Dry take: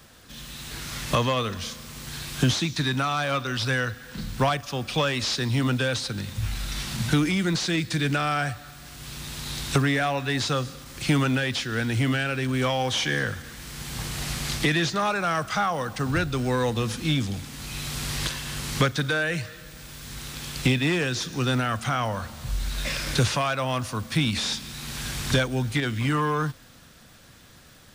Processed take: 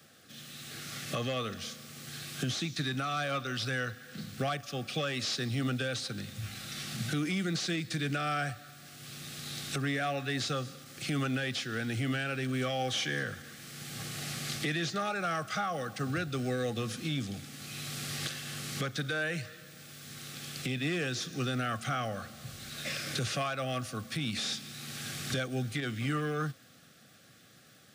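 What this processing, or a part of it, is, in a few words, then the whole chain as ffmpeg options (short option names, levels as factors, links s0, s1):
PA system with an anti-feedback notch: -af "highpass=f=110:w=0.5412,highpass=f=110:w=1.3066,asuperstop=centerf=950:order=20:qfactor=3.9,alimiter=limit=0.15:level=0:latency=1:release=128,volume=0.473"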